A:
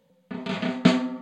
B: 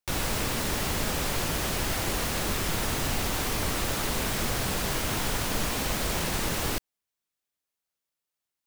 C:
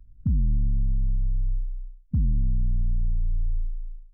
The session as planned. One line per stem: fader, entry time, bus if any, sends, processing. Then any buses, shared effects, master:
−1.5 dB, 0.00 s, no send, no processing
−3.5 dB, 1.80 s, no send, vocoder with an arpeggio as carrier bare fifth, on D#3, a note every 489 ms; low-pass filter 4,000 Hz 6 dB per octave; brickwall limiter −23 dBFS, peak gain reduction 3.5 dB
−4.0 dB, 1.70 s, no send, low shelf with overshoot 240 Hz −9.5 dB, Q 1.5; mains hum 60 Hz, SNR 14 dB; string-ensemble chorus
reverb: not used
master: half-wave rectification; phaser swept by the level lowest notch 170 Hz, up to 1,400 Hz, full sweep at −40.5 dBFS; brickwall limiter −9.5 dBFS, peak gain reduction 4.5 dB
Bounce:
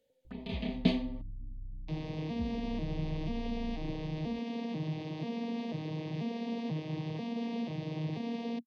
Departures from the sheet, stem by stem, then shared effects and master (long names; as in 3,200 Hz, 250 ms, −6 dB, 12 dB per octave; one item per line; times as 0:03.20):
stem A −1.5 dB → −8.5 dB
stem C: entry 1.70 s → 0.25 s
master: missing half-wave rectification